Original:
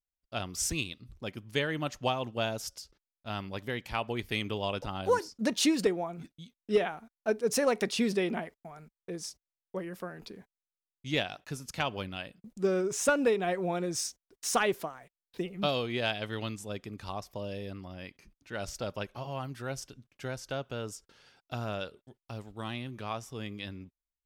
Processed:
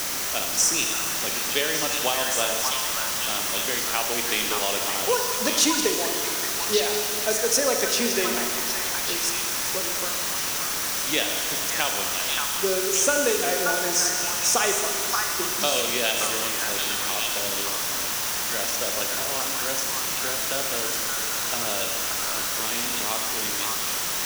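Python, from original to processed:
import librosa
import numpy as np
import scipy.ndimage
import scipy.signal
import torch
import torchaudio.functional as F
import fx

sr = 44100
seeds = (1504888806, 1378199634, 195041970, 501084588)

p1 = np.sign(x) * np.maximum(np.abs(x) - 10.0 ** (-46.0 / 20.0), 0.0)
p2 = scipy.signal.sosfilt(scipy.signal.butter(2, 310.0, 'highpass', fs=sr, output='sos'), p1)
p3 = fx.high_shelf(p2, sr, hz=4500.0, db=9.0)
p4 = fx.quant_dither(p3, sr, seeds[0], bits=6, dither='triangular')
p5 = fx.peak_eq(p4, sr, hz=5900.0, db=7.0, octaves=0.35)
p6 = p5 + fx.echo_stepped(p5, sr, ms=576, hz=1300.0, octaves=1.4, feedback_pct=70, wet_db=-1, dry=0)
p7 = fx.rev_schroeder(p6, sr, rt60_s=1.9, comb_ms=26, drr_db=3.5)
p8 = fx.band_squash(p7, sr, depth_pct=40)
y = p8 * librosa.db_to_amplitude(4.5)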